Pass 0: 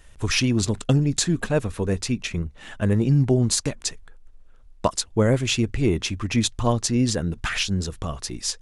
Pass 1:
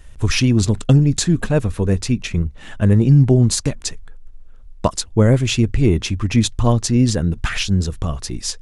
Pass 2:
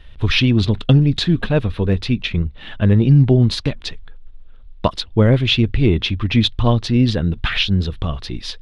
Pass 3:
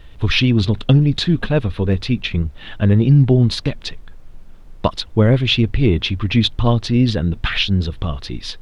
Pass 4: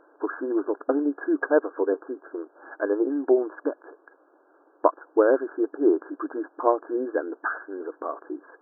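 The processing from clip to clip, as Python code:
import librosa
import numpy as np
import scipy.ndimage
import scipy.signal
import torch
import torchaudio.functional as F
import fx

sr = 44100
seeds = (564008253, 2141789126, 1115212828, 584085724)

y1 = fx.low_shelf(x, sr, hz=220.0, db=8.0)
y1 = F.gain(torch.from_numpy(y1), 2.0).numpy()
y2 = fx.high_shelf_res(y1, sr, hz=5200.0, db=-13.5, q=3.0)
y3 = fx.dmg_noise_colour(y2, sr, seeds[0], colour='brown', level_db=-45.0)
y4 = fx.brickwall_bandpass(y3, sr, low_hz=280.0, high_hz=1700.0)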